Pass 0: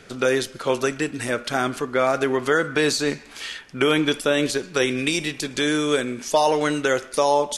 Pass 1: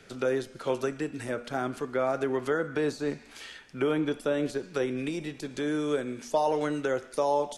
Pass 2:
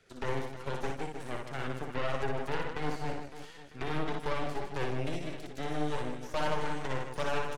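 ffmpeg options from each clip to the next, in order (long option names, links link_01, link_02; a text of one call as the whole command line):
ffmpeg -i in.wav -filter_complex "[0:a]equalizer=frequency=1100:width=6.4:gain=-3,bandreject=frequency=240.2:width_type=h:width=4,bandreject=frequency=480.4:width_type=h:width=4,bandreject=frequency=720.6:width_type=h:width=4,bandreject=frequency=960.8:width_type=h:width=4,bandreject=frequency=1201:width_type=h:width=4,bandreject=frequency=1441.2:width_type=h:width=4,bandreject=frequency=1681.4:width_type=h:width=4,bandreject=frequency=1921.6:width_type=h:width=4,bandreject=frequency=2161.8:width_type=h:width=4,bandreject=frequency=2402:width_type=h:width=4,bandreject=frequency=2642.2:width_type=h:width=4,bandreject=frequency=2882.4:width_type=h:width=4,bandreject=frequency=3122.6:width_type=h:width=4,bandreject=frequency=3362.8:width_type=h:width=4,bandreject=frequency=3603:width_type=h:width=4,bandreject=frequency=3843.2:width_type=h:width=4,bandreject=frequency=4083.4:width_type=h:width=4,bandreject=frequency=4323.6:width_type=h:width=4,bandreject=frequency=4563.8:width_type=h:width=4,bandreject=frequency=4804:width_type=h:width=4,bandreject=frequency=5044.2:width_type=h:width=4,bandreject=frequency=5284.4:width_type=h:width=4,bandreject=frequency=5524.6:width_type=h:width=4,bandreject=frequency=5764.8:width_type=h:width=4,bandreject=frequency=6005:width_type=h:width=4,bandreject=frequency=6245.2:width_type=h:width=4,bandreject=frequency=6485.4:width_type=h:width=4,bandreject=frequency=6725.6:width_type=h:width=4,bandreject=frequency=6965.8:width_type=h:width=4,bandreject=frequency=7206:width_type=h:width=4,bandreject=frequency=7446.2:width_type=h:width=4,bandreject=frequency=7686.4:width_type=h:width=4,bandreject=frequency=7926.6:width_type=h:width=4,bandreject=frequency=8166.8:width_type=h:width=4,bandreject=frequency=8407:width_type=h:width=4,bandreject=frequency=8647.2:width_type=h:width=4,acrossover=split=180|1400[link_01][link_02][link_03];[link_03]acompressor=threshold=-37dB:ratio=6[link_04];[link_01][link_02][link_04]amix=inputs=3:normalize=0,volume=-6.5dB" out.wav
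ffmpeg -i in.wav -af "flanger=delay=1.4:depth=7.6:regen=33:speed=0.92:shape=triangular,aeval=exprs='0.158*(cos(1*acos(clip(val(0)/0.158,-1,1)))-cos(1*PI/2))+0.0501*(cos(8*acos(clip(val(0)/0.158,-1,1)))-cos(8*PI/2))':channel_layout=same,aecho=1:1:60|156|309.6|555.4|948.6:0.631|0.398|0.251|0.158|0.1,volume=-8dB" out.wav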